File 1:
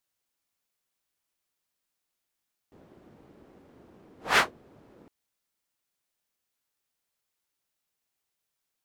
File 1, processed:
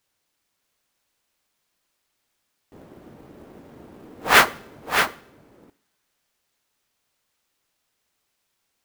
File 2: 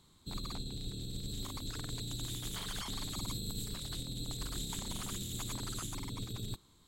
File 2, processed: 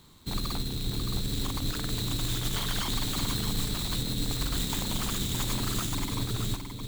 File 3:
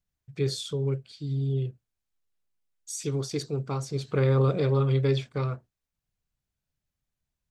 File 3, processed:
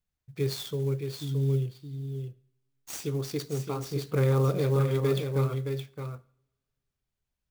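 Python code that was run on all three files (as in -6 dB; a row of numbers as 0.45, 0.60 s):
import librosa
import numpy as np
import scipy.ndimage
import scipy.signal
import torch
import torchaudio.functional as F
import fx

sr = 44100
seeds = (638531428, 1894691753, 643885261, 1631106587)

p1 = x + fx.echo_single(x, sr, ms=619, db=-6.5, dry=0)
p2 = fx.rev_double_slope(p1, sr, seeds[0], early_s=0.6, late_s=2.3, knee_db=-27, drr_db=18.0)
p3 = fx.clock_jitter(p2, sr, seeds[1], jitter_ms=0.021)
y = p3 * 10.0 ** (-30 / 20.0) / np.sqrt(np.mean(np.square(p3)))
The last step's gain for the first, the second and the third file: +9.0, +9.0, -2.0 dB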